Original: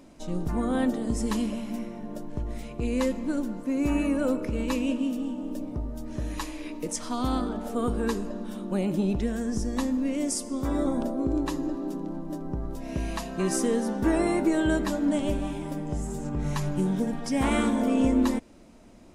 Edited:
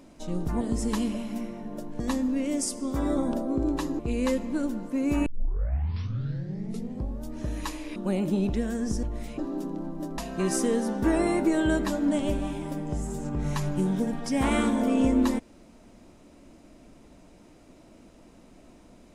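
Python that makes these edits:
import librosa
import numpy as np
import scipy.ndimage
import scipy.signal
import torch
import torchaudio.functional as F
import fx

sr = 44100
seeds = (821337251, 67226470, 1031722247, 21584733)

y = fx.edit(x, sr, fx.cut(start_s=0.61, length_s=0.38),
    fx.swap(start_s=2.38, length_s=0.35, other_s=9.69, other_length_s=1.99),
    fx.tape_start(start_s=4.0, length_s=2.01),
    fx.cut(start_s=6.7, length_s=1.92),
    fx.cut(start_s=12.48, length_s=0.7), tone=tone)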